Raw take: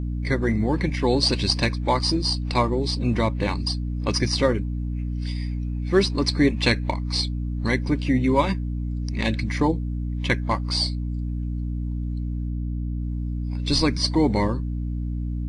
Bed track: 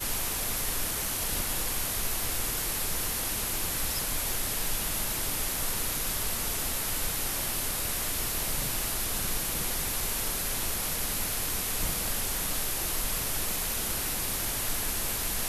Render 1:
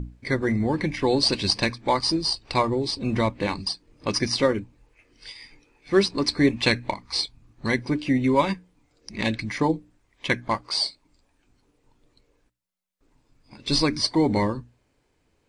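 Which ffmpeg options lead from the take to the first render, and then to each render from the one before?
-af "bandreject=f=60:t=h:w=6,bandreject=f=120:t=h:w=6,bandreject=f=180:t=h:w=6,bandreject=f=240:t=h:w=6,bandreject=f=300:t=h:w=6"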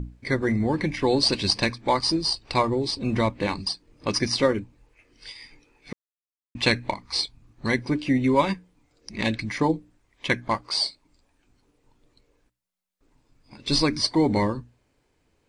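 -filter_complex "[0:a]asplit=3[a][b][c];[a]atrim=end=5.93,asetpts=PTS-STARTPTS,afade=t=out:st=5.926:d=0.004:c=hsin[d];[b]atrim=start=5.93:end=6.55,asetpts=PTS-STARTPTS,volume=0[e];[c]atrim=start=6.55,asetpts=PTS-STARTPTS,afade=t=in:d=0.004:c=hsin[f];[d][e][f]concat=n=3:v=0:a=1"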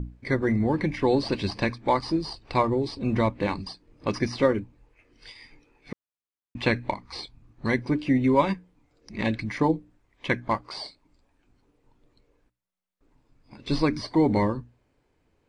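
-filter_complex "[0:a]acrossover=split=3000[a][b];[b]acompressor=threshold=-31dB:ratio=4:attack=1:release=60[c];[a][c]amix=inputs=2:normalize=0,highshelf=f=3.4k:g=-9.5"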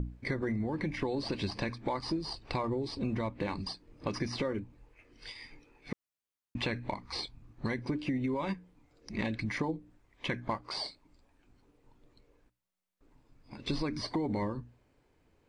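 -af "alimiter=limit=-16dB:level=0:latency=1:release=37,acompressor=threshold=-30dB:ratio=6"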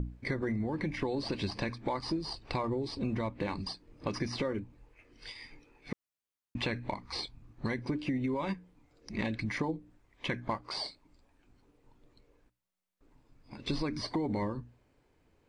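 -af anull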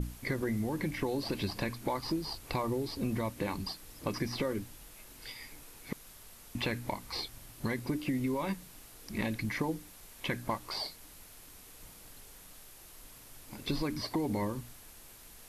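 -filter_complex "[1:a]volume=-22.5dB[a];[0:a][a]amix=inputs=2:normalize=0"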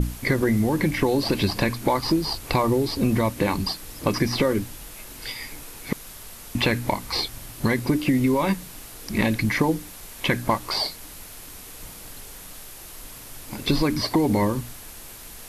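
-af "volume=12dB"

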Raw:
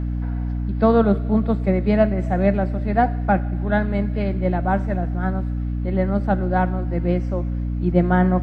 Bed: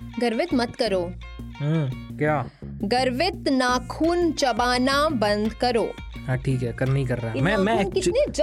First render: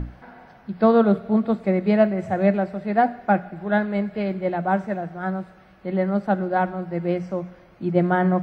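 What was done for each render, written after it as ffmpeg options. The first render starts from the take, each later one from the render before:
-af "bandreject=f=60:t=h:w=6,bandreject=f=120:t=h:w=6,bandreject=f=180:t=h:w=6,bandreject=f=240:t=h:w=6,bandreject=f=300:t=h:w=6"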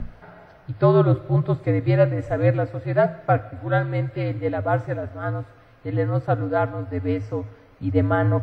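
-af "afreqshift=-74"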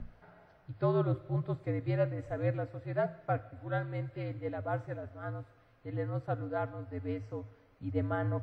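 -af "volume=-13dB"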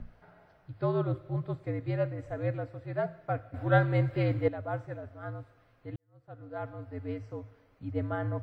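-filter_complex "[0:a]asplit=4[a][b][c][d];[a]atrim=end=3.542[e];[b]atrim=start=3.538:end=4.482,asetpts=PTS-STARTPTS,volume=10.5dB[f];[c]atrim=start=4.478:end=5.96,asetpts=PTS-STARTPTS,afade=t=out:st=1.478:d=0.004:c=hsin[g];[d]atrim=start=5.96,asetpts=PTS-STARTPTS,afade=t=in:d=0.78:c=qua[h];[e][f]acrossfade=d=0.004:c1=hsin:c2=hsin[i];[g][h]concat=n=2:v=0:a=1[j];[i][j]acrossfade=d=0.004:c1=hsin:c2=hsin"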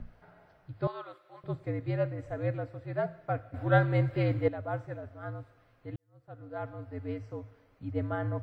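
-filter_complex "[0:a]asettb=1/sr,asplit=3[a][b][c];[a]atrim=end=0.874[d];[b]atrim=start=0.87:end=1.44,asetpts=PTS-STARTPTS,afade=t=in:d=0.004:c=qsin,afade=t=out:st=0.566:d=0.004:c=qsin,highpass=1k[e];[c]atrim=start=1.436[f];[d][e]acrossfade=d=0.004:c1=hsin:c2=qsin[g];[g][f]acrossfade=d=0.004:c1=qsin:c2=hsin"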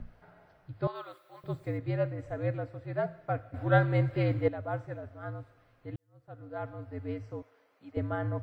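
-filter_complex "[0:a]asettb=1/sr,asplit=3[a][b][c];[a]atrim=end=0.954[d];[b]atrim=start=0.95:end=1.78,asetpts=PTS-STARTPTS,afade=t=in:d=0.004:c=qsin,afade=t=out:st=0.826:d=0.004:c=qsin,aemphasis=mode=production:type=50fm[e];[c]atrim=start=1.776[f];[d][e]acrossfade=d=0.004:c1=hsin:c2=qsin[g];[g][f]acrossfade=d=0.004:c1=qsin:c2=hsin,asettb=1/sr,asplit=3[h][i][j];[h]atrim=end=7.424[k];[i]atrim=start=7.42:end=7.97,asetpts=PTS-STARTPTS,afade=t=in:d=0.004:c=qsin,afade=t=out:st=0.546:d=0.004:c=qsin,highpass=440[l];[j]atrim=start=7.966[m];[k][l]acrossfade=d=0.004:c1=hsin:c2=qsin[n];[n][m]acrossfade=d=0.004:c1=qsin:c2=hsin"

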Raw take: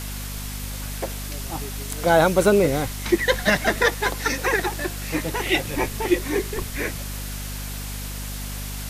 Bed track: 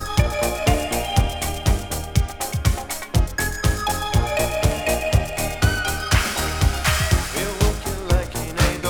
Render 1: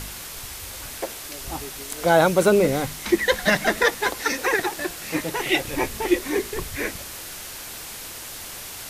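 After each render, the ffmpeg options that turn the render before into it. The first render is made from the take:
-af "bandreject=f=50:t=h:w=4,bandreject=f=100:t=h:w=4,bandreject=f=150:t=h:w=4,bandreject=f=200:t=h:w=4,bandreject=f=250:t=h:w=4"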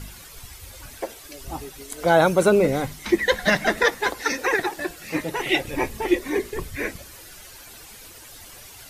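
-af "afftdn=nr=11:nf=-37"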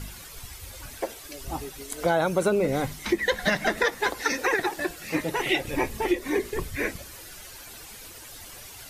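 -af "acompressor=threshold=-20dB:ratio=4"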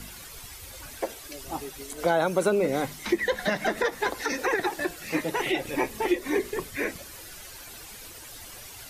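-filter_complex "[0:a]acrossover=split=170|1100[a][b][c];[a]acompressor=threshold=-46dB:ratio=6[d];[c]alimiter=limit=-22dB:level=0:latency=1:release=82[e];[d][b][e]amix=inputs=3:normalize=0"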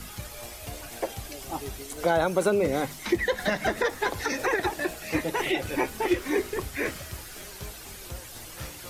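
-filter_complex "[1:a]volume=-22dB[a];[0:a][a]amix=inputs=2:normalize=0"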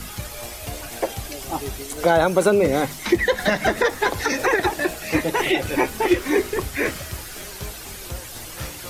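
-af "volume=6.5dB"

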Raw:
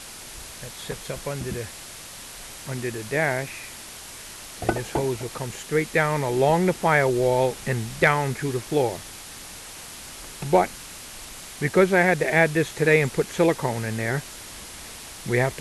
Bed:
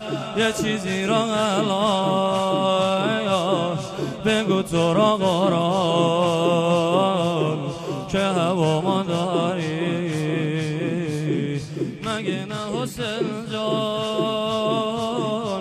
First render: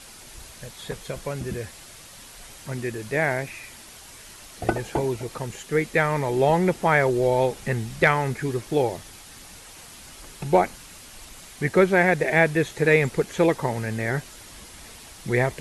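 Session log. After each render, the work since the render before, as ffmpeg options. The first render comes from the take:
-af "afftdn=nr=6:nf=-40"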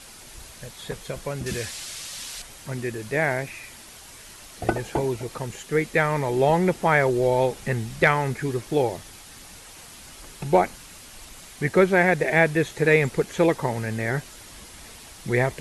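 -filter_complex "[0:a]asettb=1/sr,asplit=3[a][b][c];[a]atrim=end=1.464[d];[b]atrim=start=1.46:end=2.42,asetpts=PTS-STARTPTS,afade=t=in:d=0.004:c=qsin,afade=t=out:st=0.956:d=0.004:c=qsin,equalizer=f=5k:t=o:w=3:g=11.5[e];[c]atrim=start=2.416[f];[d][e]acrossfade=d=0.004:c1=hsin:c2=qsin[g];[g][f]acrossfade=d=0.004:c1=qsin:c2=hsin"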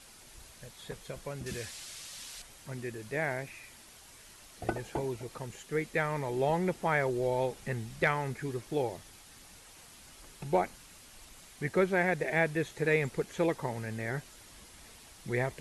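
-af "volume=-9.5dB"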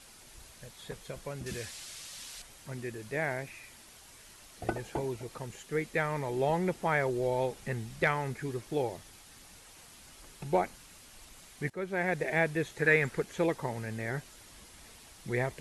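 -filter_complex "[0:a]asettb=1/sr,asplit=3[a][b][c];[a]atrim=end=12.794[d];[b]atrim=start=12.79:end=13.21,asetpts=PTS-STARTPTS,afade=t=in:d=0.004:c=qsin,afade=t=out:st=0.416:d=0.004:c=qsin,equalizer=f=1.6k:t=o:w=0.71:g=9.5[e];[c]atrim=start=13.206[f];[d][e]acrossfade=d=0.004:c1=hsin:c2=qsin[g];[g][f]acrossfade=d=0.004:c1=qsin:c2=hsin,asplit=2[h][i];[h]atrim=end=11.7,asetpts=PTS-STARTPTS,afade=t=out:st=11.696:d=0.004:c=hsin:silence=0.112202[j];[i]atrim=start=11.7,asetpts=PTS-STARTPTS,afade=t=in:d=0.47:silence=0.112202[k];[j][k]concat=n=2:v=0:a=1"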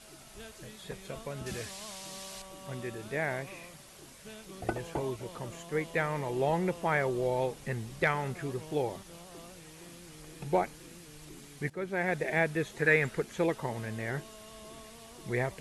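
-filter_complex "[1:a]volume=-28.5dB[a];[0:a][a]amix=inputs=2:normalize=0"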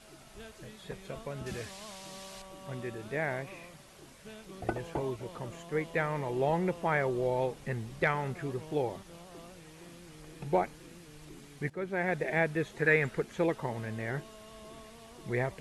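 -af "highshelf=f=4.3k:g=-7"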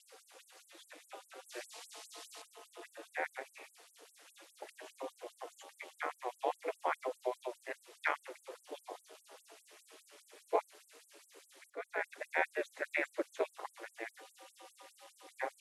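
-af "aeval=exprs='val(0)*sin(2*PI*120*n/s)':c=same,afftfilt=real='re*gte(b*sr/1024,290*pow(7900/290,0.5+0.5*sin(2*PI*4.9*pts/sr)))':imag='im*gte(b*sr/1024,290*pow(7900/290,0.5+0.5*sin(2*PI*4.9*pts/sr)))':win_size=1024:overlap=0.75"

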